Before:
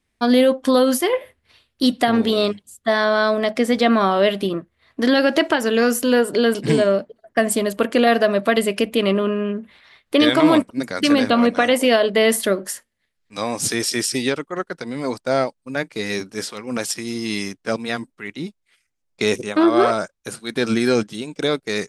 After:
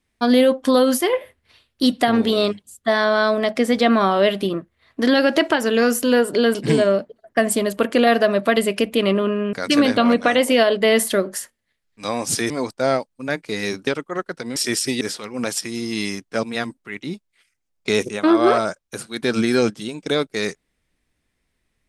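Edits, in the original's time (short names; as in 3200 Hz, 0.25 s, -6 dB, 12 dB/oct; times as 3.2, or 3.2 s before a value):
9.53–10.86 cut
13.83–14.28 swap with 14.97–16.34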